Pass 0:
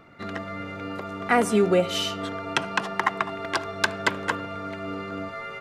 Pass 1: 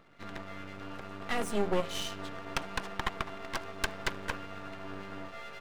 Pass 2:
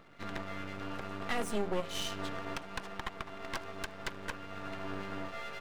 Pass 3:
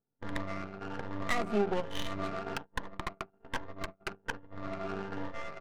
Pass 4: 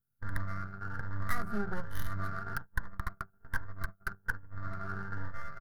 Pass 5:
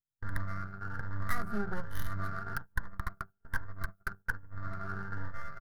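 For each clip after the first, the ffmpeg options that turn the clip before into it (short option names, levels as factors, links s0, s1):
-af "aeval=exprs='max(val(0),0)':c=same,volume=0.531"
-af "alimiter=limit=0.0668:level=0:latency=1:release=438,volume=1.33"
-af "afftfilt=real='re*pow(10,11/40*sin(2*PI*(1.1*log(max(b,1)*sr/1024/100)/log(2)-(1.2)*(pts-256)/sr)))':imag='im*pow(10,11/40*sin(2*PI*(1.1*log(max(b,1)*sr/1024/100)/log(2)-(1.2)*(pts-256)/sr)))':win_size=1024:overlap=0.75,agate=range=0.0355:threshold=0.0112:ratio=16:detection=peak,adynamicsmooth=sensitivity=6:basefreq=710,volume=1.26"
-af "firequalizer=gain_entry='entry(100,0);entry(280,-18);entry(450,-19);entry(820,-18);entry(1500,0);entry(2500,-27);entry(4700,-12);entry(7600,-16);entry(11000,2)':delay=0.05:min_phase=1,volume=2.24"
-af "agate=range=0.178:threshold=0.00398:ratio=16:detection=peak"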